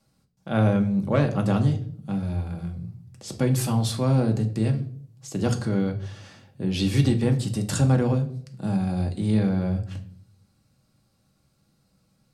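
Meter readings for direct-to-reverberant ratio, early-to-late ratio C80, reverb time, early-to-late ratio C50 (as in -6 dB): 3.5 dB, 17.0 dB, 0.55 s, 13.5 dB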